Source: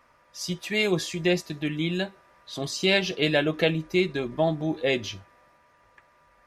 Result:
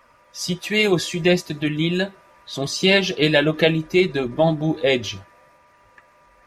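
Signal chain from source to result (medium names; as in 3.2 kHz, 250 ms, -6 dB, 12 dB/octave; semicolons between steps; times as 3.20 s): coarse spectral quantiser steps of 15 dB; trim +6.5 dB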